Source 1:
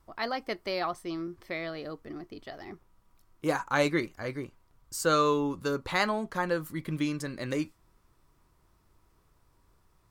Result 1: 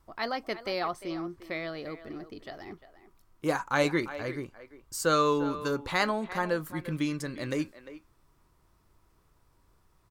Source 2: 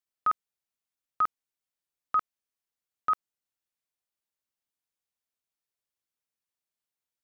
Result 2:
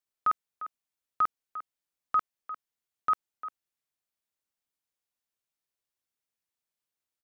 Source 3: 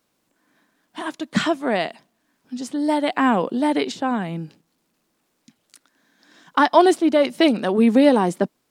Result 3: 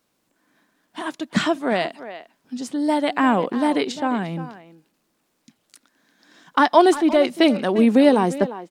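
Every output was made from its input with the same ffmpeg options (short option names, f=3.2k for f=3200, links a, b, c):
-filter_complex "[0:a]asplit=2[a][b];[b]adelay=350,highpass=300,lowpass=3.4k,asoftclip=type=hard:threshold=-10.5dB,volume=-13dB[c];[a][c]amix=inputs=2:normalize=0"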